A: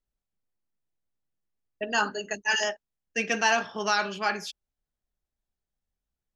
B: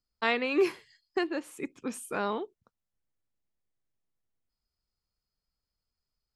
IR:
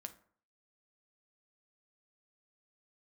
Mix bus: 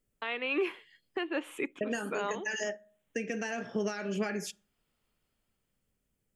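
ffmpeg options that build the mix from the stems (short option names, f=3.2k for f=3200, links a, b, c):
-filter_complex "[0:a]highshelf=f=6.6k:g=5.5,acompressor=threshold=-33dB:ratio=16,equalizer=f=125:t=o:w=1:g=10,equalizer=f=250:t=o:w=1:g=8,equalizer=f=500:t=o:w=1:g=10,equalizer=f=1k:t=o:w=1:g=-10,equalizer=f=2k:t=o:w=1:g=8,equalizer=f=4k:t=o:w=1:g=-12,equalizer=f=8k:t=o:w=1:g=6,volume=0dB,asplit=3[a][b][c];[b]volume=-5dB[d];[1:a]highpass=290,highshelf=f=3.9k:t=q:w=3:g=-7.5,dynaudnorm=f=310:g=9:m=13dB,volume=-0.5dB,asplit=2[e][f];[f]volume=-23dB[g];[c]apad=whole_len=280165[h];[e][h]sidechaincompress=threshold=-36dB:ratio=10:attack=8:release=795[i];[2:a]atrim=start_sample=2205[j];[d][g]amix=inputs=2:normalize=0[k];[k][j]afir=irnorm=-1:irlink=0[l];[a][i][l]amix=inputs=3:normalize=0,alimiter=limit=-22dB:level=0:latency=1:release=387"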